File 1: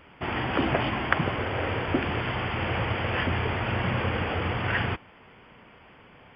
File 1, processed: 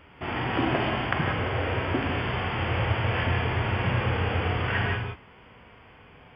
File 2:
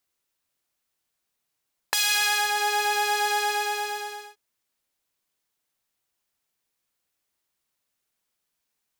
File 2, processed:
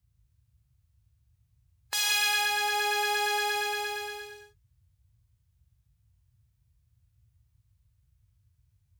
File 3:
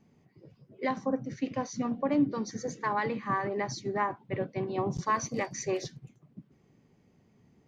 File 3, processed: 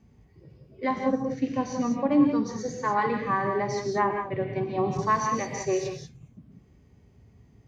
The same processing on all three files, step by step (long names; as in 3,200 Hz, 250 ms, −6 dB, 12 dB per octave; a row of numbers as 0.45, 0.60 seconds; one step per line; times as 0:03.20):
reverb whose tail is shaped and stops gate 210 ms rising, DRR 4.5 dB
harmonic and percussive parts rebalanced percussive −8 dB
noise in a band 47–120 Hz −63 dBFS
loudness normalisation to −27 LKFS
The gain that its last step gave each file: +2.0, −4.0, +4.5 decibels